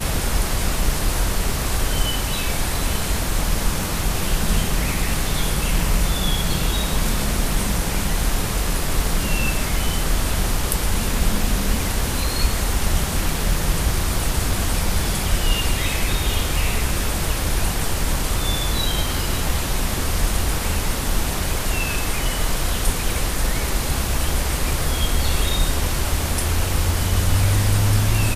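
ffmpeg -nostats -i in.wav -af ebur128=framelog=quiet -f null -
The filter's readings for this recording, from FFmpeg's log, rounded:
Integrated loudness:
  I:         -22.1 LUFS
  Threshold: -32.1 LUFS
Loudness range:
  LRA:         1.0 LU
  Threshold: -42.3 LUFS
  LRA low:   -22.9 LUFS
  LRA high:  -21.8 LUFS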